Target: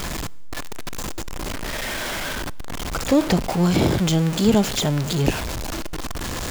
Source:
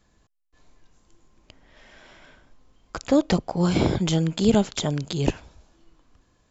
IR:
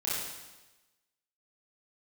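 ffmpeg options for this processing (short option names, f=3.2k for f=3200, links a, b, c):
-filter_complex "[0:a]aeval=exprs='val(0)+0.5*0.0794*sgn(val(0))':c=same,asplit=2[a][b];[1:a]atrim=start_sample=2205[c];[b][c]afir=irnorm=-1:irlink=0,volume=-30dB[d];[a][d]amix=inputs=2:normalize=0"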